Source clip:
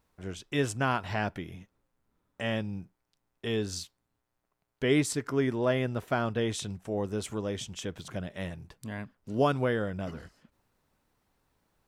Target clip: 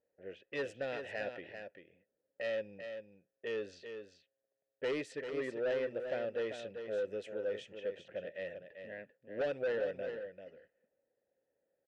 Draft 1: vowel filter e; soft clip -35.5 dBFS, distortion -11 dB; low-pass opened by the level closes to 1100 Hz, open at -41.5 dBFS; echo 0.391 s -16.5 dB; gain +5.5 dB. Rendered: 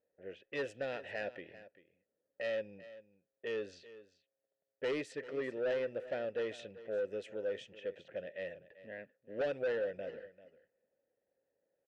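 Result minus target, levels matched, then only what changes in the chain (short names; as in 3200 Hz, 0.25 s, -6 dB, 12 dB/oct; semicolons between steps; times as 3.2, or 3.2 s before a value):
echo-to-direct -8.5 dB
change: echo 0.391 s -8 dB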